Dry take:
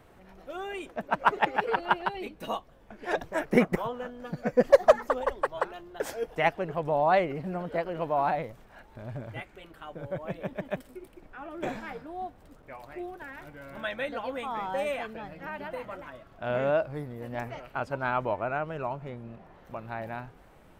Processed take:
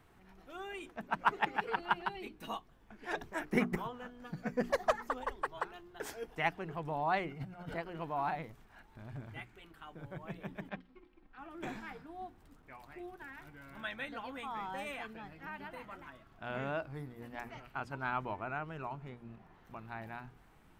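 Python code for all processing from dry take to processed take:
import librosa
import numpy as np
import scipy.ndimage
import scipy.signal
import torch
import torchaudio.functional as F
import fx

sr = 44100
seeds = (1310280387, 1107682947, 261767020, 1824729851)

y = fx.chain(x, sr, fx.leveller(passes=1),
    fx.over_compress(threshold_db=-36.0, ratio=-0.5),
    fx.comb(ms=1.4, depth=0.47), at=(7.29, 7.74))
y = fx.chain(y, sr, fx.law_mismatch(coded='A'),
    fx.lowpass(hz=4100.0, slope=24),
    fx.comb(ms=3.8, depth=0.51), at=(10.69, 11.38))
y = fx.peak_eq(y, sr, hz=560.0, db=-11.5, octaves=0.51)
y = fx.hum_notches(y, sr, base_hz=60, count=7)
y = y * librosa.db_to_amplitude(-5.5)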